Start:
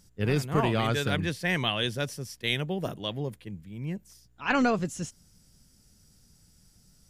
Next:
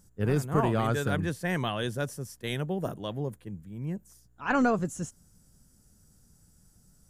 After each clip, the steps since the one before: high-order bell 3.3 kHz -9 dB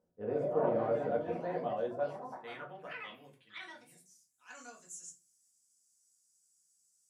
ever faster or slower copies 197 ms, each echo +5 st, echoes 2, each echo -6 dB; band-pass sweep 560 Hz -> 7.3 kHz, 1.79–4.24 s; simulated room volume 160 m³, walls furnished, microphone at 1.9 m; trim -4.5 dB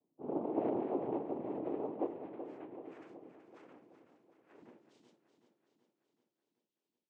noise-vocoded speech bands 4; band-pass filter 320 Hz, Q 2; on a send: feedback delay 378 ms, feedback 58%, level -10 dB; on the sum: trim +2.5 dB

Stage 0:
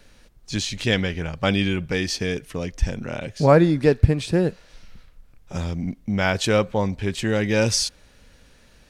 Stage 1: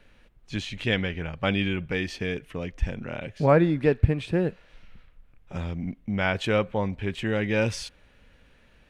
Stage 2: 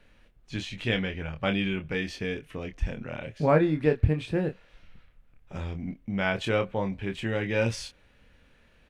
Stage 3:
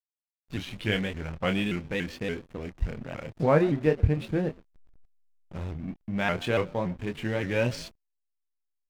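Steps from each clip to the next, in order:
resonant high shelf 3.8 kHz -9 dB, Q 1.5; trim -4.5 dB
doubling 26 ms -7 dB; trim -3 dB
frequency-shifting echo 123 ms, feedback 32%, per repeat +56 Hz, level -20 dB; hysteresis with a dead band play -37.5 dBFS; vibrato with a chosen wave saw up 3.5 Hz, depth 160 cents

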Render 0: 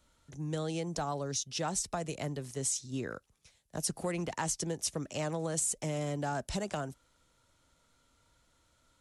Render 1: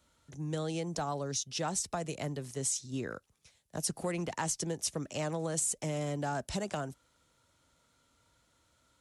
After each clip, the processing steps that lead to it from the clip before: high-pass 57 Hz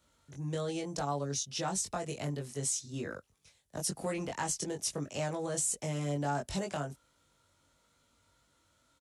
doubling 21 ms -3 dB; trim -2 dB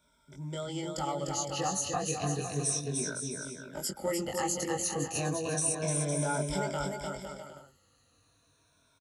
drifting ripple filter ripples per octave 1.6, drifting -0.33 Hz, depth 18 dB; bouncing-ball echo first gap 300 ms, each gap 0.7×, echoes 5; trim -2.5 dB

